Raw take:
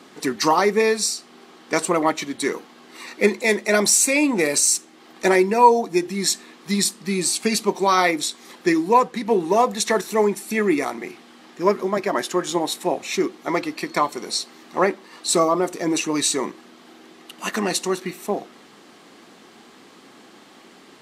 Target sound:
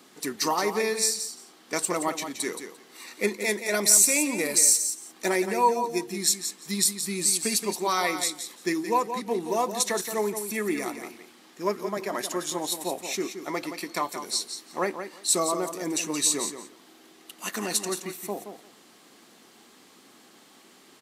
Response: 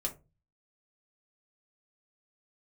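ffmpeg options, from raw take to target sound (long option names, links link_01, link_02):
-filter_complex "[0:a]aemphasis=mode=production:type=50kf,asplit=2[link_01][link_02];[link_02]aecho=0:1:173|346:0.355|0.0568[link_03];[link_01][link_03]amix=inputs=2:normalize=0,volume=-9dB"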